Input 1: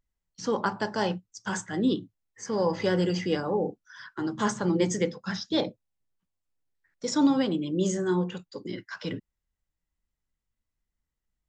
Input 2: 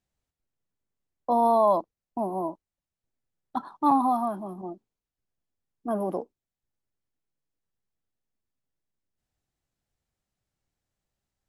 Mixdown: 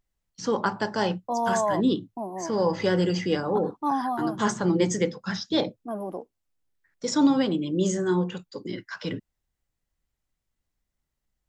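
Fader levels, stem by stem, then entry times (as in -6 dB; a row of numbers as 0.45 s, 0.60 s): +2.0 dB, -4.5 dB; 0.00 s, 0.00 s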